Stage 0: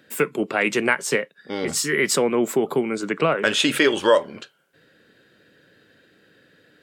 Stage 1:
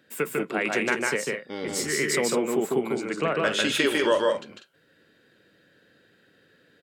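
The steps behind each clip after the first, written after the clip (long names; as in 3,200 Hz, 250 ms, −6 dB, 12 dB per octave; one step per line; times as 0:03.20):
loudspeakers that aren't time-aligned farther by 51 metres −2 dB, 67 metres −8 dB
level −6.5 dB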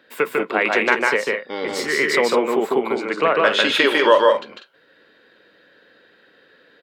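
octave-band graphic EQ 125/250/500/1,000/2,000/4,000/8,000 Hz −6/+3/+7/+11/+6/+9/−6 dB
level −1.5 dB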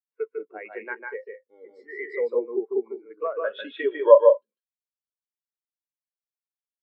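every bin expanded away from the loudest bin 2.5 to 1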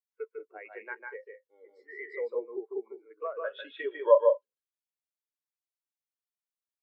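high-pass filter 430 Hz 12 dB per octave
level −6 dB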